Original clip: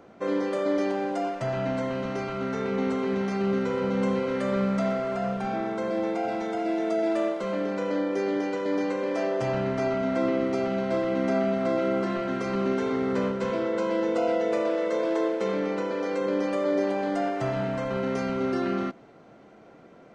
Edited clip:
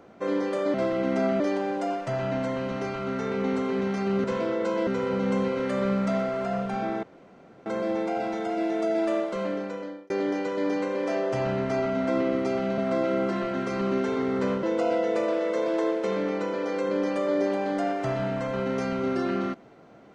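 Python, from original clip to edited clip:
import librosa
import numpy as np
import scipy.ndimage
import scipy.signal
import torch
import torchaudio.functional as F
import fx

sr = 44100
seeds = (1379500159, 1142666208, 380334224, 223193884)

y = fx.edit(x, sr, fx.insert_room_tone(at_s=5.74, length_s=0.63),
    fx.fade_out_span(start_s=7.51, length_s=0.67),
    fx.move(start_s=10.86, length_s=0.66, to_s=0.74),
    fx.move(start_s=13.37, length_s=0.63, to_s=3.58), tone=tone)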